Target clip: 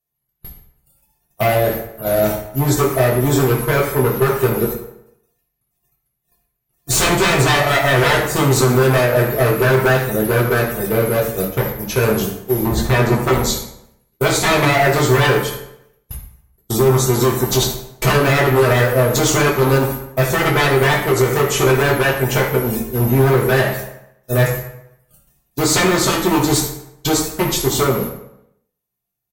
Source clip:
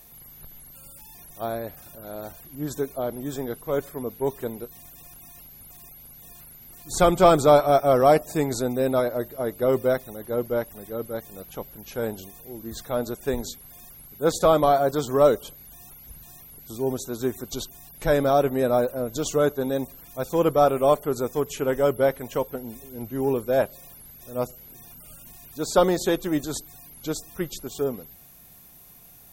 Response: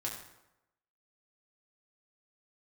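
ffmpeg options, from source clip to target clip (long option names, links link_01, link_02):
-filter_complex "[0:a]agate=range=-53dB:threshold=-40dB:ratio=16:detection=peak,asettb=1/sr,asplit=3[link_01][link_02][link_03];[link_01]atrim=end=12.654[link_04];[link_02]atrim=start=12.65:end=13.31,asetpts=PTS-STARTPTS,afade=type=in:duration=0.004:curve=qsin,afade=type=out:start_time=0.656:duration=0.004:curve=qsin,tiltshelf=frequency=1400:gain=6[link_05];[link_03]atrim=start=13.306[link_06];[link_04][link_05]acrossfade=duration=0.004:curve1=hsin:curve2=qsin[link_07];[link_07][link_06]acrossfade=duration=0.004:curve1=qsin:curve2=hsin,acompressor=threshold=-38dB:ratio=2,aeval=exprs='0.0251*(abs(mod(val(0)/0.0251+3,4)-2)-1)':channel_layout=same,asplit=2[link_08][link_09];[link_09]adelay=121,lowpass=frequency=2000:poles=1,volume=-22dB,asplit=2[link_10][link_11];[link_11]adelay=121,lowpass=frequency=2000:poles=1,volume=0.5,asplit=2[link_12][link_13];[link_13]adelay=121,lowpass=frequency=2000:poles=1,volume=0.5[link_14];[link_08][link_10][link_12][link_14]amix=inputs=4:normalize=0[link_15];[1:a]atrim=start_sample=2205,asetrate=52920,aresample=44100[link_16];[link_15][link_16]afir=irnorm=-1:irlink=0,alimiter=level_in=27dB:limit=-1dB:release=50:level=0:latency=1,volume=-3.5dB"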